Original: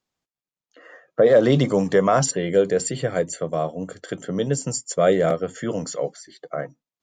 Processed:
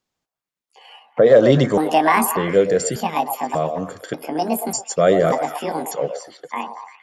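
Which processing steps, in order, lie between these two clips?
pitch shift switched off and on +8 st, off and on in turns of 591 ms; repeats whose band climbs or falls 116 ms, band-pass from 690 Hz, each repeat 0.7 oct, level -5.5 dB; trim +2.5 dB

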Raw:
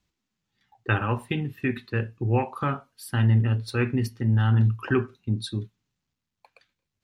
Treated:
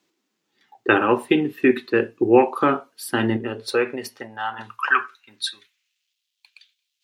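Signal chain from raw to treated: 3.36–4.59 s: compression 6:1, threshold -24 dBFS, peak gain reduction 7.5 dB; high-pass sweep 340 Hz -> 3.2 kHz, 3.37–6.19 s; trim +7.5 dB

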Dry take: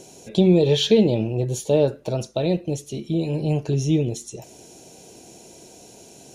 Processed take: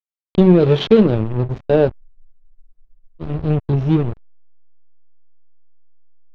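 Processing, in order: hysteresis with a dead band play -18 dBFS; distance through air 230 m; spectral freeze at 2.03 s, 1.18 s; trim +6 dB

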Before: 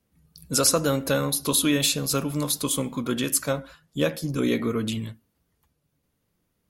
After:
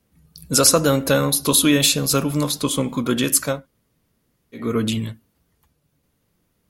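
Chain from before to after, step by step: 2.48–2.89 s: treble shelf 8.2 kHz -11 dB; 3.55–4.64 s: room tone, crossfade 0.24 s; trim +6 dB

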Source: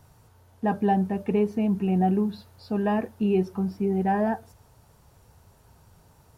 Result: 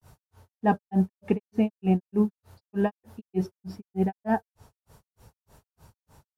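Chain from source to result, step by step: granulator 188 ms, grains 3.3 per s, spray 24 ms, pitch spread up and down by 0 st; trim +4 dB

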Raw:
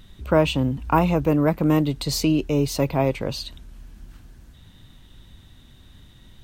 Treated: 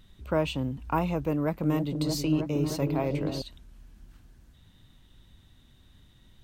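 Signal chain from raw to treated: 1.32–3.42 s: delay with an opening low-pass 314 ms, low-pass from 400 Hz, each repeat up 1 oct, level -3 dB; trim -8.5 dB

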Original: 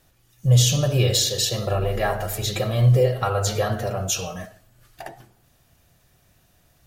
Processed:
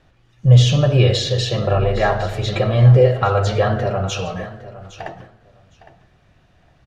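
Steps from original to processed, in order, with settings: low-pass 3 kHz 12 dB/octave; on a send: feedback delay 810 ms, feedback 16%, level -16 dB; on the sum: trim +6 dB

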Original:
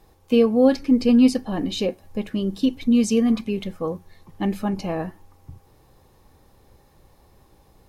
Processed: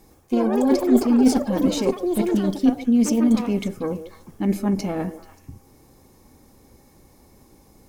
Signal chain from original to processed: resonant high shelf 4.6 kHz +6.5 dB, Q 1.5; reverse; compression 16:1, threshold -23 dBFS, peak gain reduction 13.5 dB; reverse; Chebyshev shaper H 2 -6 dB, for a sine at -13.5 dBFS; small resonant body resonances 250/2200 Hz, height 10 dB, ringing for 25 ms; on a send: repeats whose band climbs or falls 145 ms, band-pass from 460 Hz, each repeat 1.4 oct, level -10 dB; on the sum: ever faster or slower copies 111 ms, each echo +7 st, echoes 3, each echo -6 dB

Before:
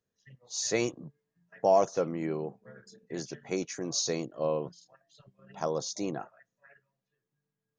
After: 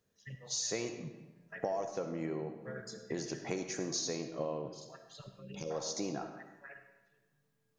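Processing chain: compression 6:1, threshold -42 dBFS, peak gain reduction 22 dB; on a send at -7 dB: reverberation RT60 1.2 s, pre-delay 25 ms; on the sum: time-frequency box 5.42–5.71 s, 560–2100 Hz -20 dB; trim +7 dB

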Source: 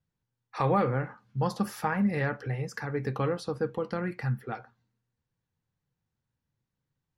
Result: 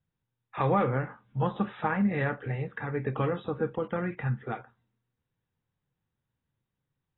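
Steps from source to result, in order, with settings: AAC 16 kbps 22.05 kHz

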